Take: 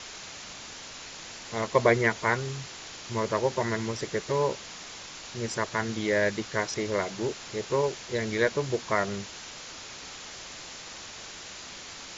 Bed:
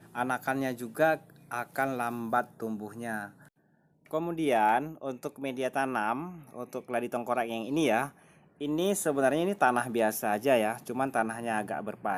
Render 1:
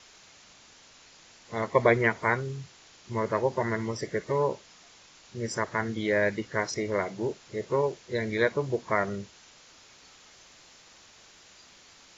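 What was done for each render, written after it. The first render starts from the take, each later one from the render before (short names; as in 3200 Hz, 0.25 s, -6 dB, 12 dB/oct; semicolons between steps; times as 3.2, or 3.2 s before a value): noise print and reduce 12 dB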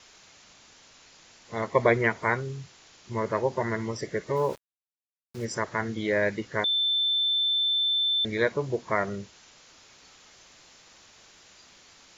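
4.36–5.45 sample gate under -41.5 dBFS; 6.64–8.25 bleep 3540 Hz -22 dBFS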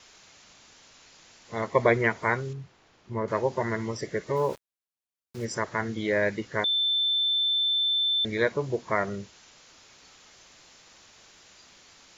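2.53–3.28 LPF 1200 Hz 6 dB/oct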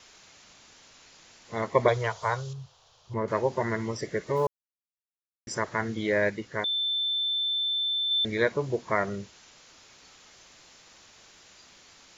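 1.88–3.14 EQ curve 130 Hz 0 dB, 270 Hz -25 dB, 500 Hz -1 dB, 1100 Hz +1 dB, 2100 Hz -11 dB, 3200 Hz +5 dB, 6400 Hz +6 dB, 9800 Hz 0 dB; 4.47–5.47 mute; 6.3–8.11 gain -3 dB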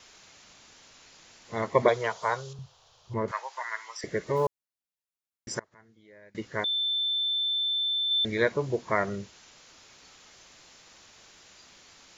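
1.82–2.59 resonant low shelf 140 Hz -11 dB, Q 1.5; 3.31–4.04 HPF 930 Hz 24 dB/oct; 5.59–6.35 flipped gate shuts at -30 dBFS, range -28 dB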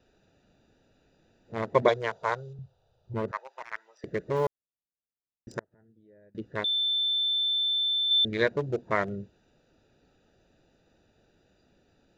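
Wiener smoothing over 41 samples; bell 3700 Hz +4.5 dB 0.79 oct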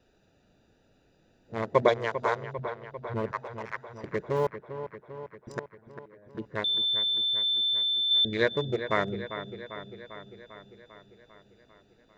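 dark delay 0.397 s, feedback 64%, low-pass 3000 Hz, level -10.5 dB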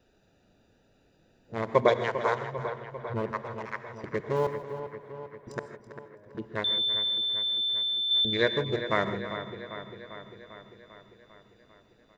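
feedback echo 0.329 s, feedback 17%, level -15 dB; non-linear reverb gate 0.18 s rising, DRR 10.5 dB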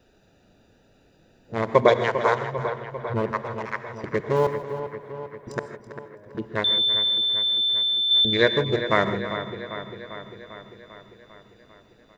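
gain +6 dB; limiter -3 dBFS, peak gain reduction 1.5 dB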